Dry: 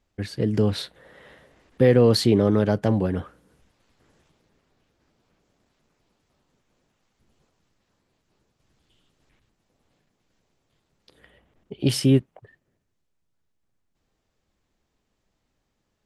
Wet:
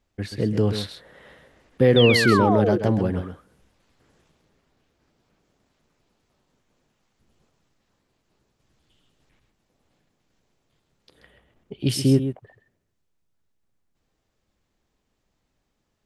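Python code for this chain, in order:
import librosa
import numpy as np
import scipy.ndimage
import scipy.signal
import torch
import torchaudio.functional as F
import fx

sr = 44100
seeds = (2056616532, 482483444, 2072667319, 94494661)

y = fx.spec_paint(x, sr, seeds[0], shape='fall', start_s=1.96, length_s=0.82, low_hz=330.0, high_hz=3700.0, level_db=-23.0)
y = fx.peak_eq(y, sr, hz=fx.line((11.77, 460.0), (12.17, 2900.0)), db=-8.5, octaves=1.6, at=(11.77, 12.17), fade=0.02)
y = y + 10.0 ** (-9.5 / 20.0) * np.pad(y, (int(132 * sr / 1000.0), 0))[:len(y)]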